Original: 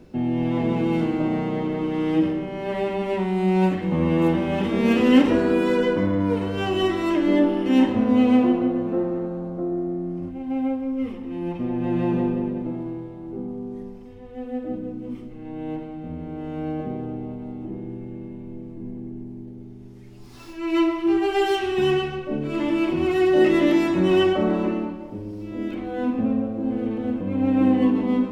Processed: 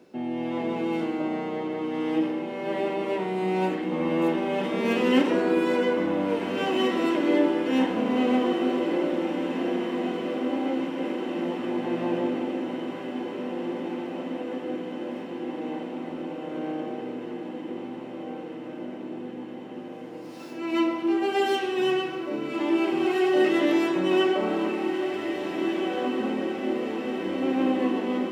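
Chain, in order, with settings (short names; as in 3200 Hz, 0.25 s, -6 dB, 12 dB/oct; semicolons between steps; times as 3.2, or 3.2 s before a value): HPF 310 Hz 12 dB/oct; diffused feedback echo 1.77 s, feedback 74%, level -7 dB; gain -2 dB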